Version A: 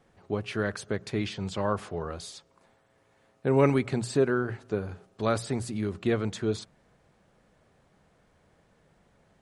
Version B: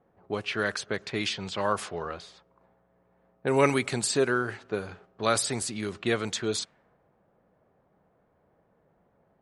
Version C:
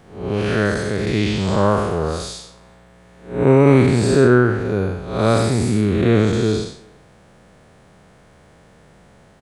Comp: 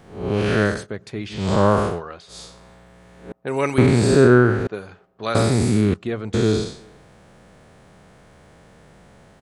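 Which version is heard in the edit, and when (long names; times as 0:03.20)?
C
0:00.75–0:01.41: punch in from A, crossfade 0.24 s
0:01.94–0:02.35: punch in from B, crossfade 0.16 s
0:03.32–0:03.78: punch in from B
0:04.67–0:05.35: punch in from B
0:05.94–0:06.34: punch in from A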